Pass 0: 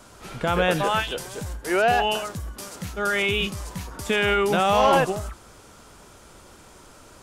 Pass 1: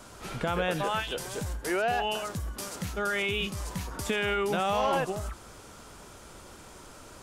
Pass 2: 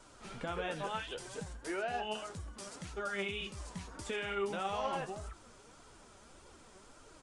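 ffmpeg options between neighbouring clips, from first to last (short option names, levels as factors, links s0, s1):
-af "acompressor=threshold=0.0282:ratio=2"
-af "flanger=delay=6:depth=8.5:regen=67:speed=0.7:shape=triangular,aresample=22050,aresample=44100,flanger=delay=2:depth=3.4:regen=46:speed=1.7:shape=triangular,volume=0.891"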